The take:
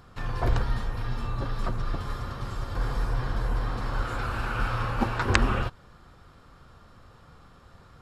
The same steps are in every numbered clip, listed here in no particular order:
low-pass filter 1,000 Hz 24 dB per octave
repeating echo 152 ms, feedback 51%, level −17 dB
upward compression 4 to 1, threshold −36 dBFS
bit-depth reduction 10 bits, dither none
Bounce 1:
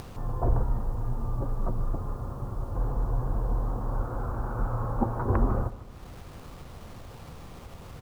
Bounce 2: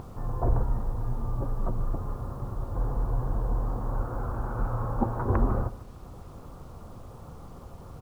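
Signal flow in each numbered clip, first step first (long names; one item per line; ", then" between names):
low-pass filter, then bit-depth reduction, then upward compression, then repeating echo
low-pass filter, then upward compression, then repeating echo, then bit-depth reduction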